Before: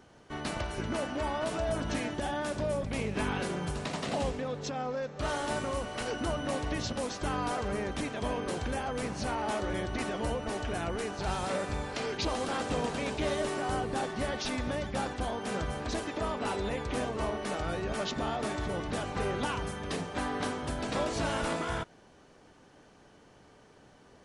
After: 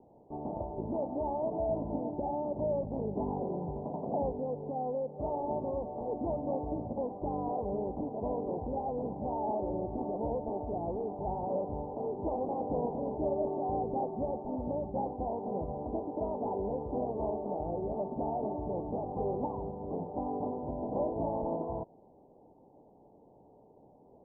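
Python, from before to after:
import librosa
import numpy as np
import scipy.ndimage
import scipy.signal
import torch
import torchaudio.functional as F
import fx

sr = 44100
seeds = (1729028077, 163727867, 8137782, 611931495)

y = scipy.signal.sosfilt(scipy.signal.butter(12, 910.0, 'lowpass', fs=sr, output='sos'), x)
y = fx.low_shelf(y, sr, hz=150.0, db=-9.5)
y = y * librosa.db_to_amplitude(1.5)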